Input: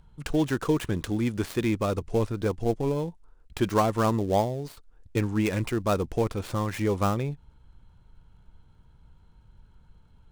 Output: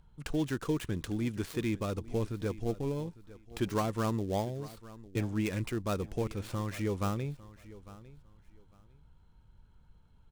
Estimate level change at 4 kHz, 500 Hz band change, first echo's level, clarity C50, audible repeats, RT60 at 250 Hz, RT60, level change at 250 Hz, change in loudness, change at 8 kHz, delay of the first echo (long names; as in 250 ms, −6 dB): −5.5 dB, −8.5 dB, −18.5 dB, no reverb audible, 2, no reverb audible, no reverb audible, −6.5 dB, −7.0 dB, −5.5 dB, 852 ms